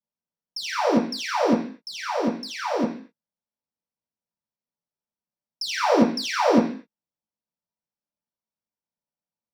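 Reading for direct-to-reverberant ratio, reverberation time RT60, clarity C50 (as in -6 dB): -9.5 dB, 0.45 s, 7.5 dB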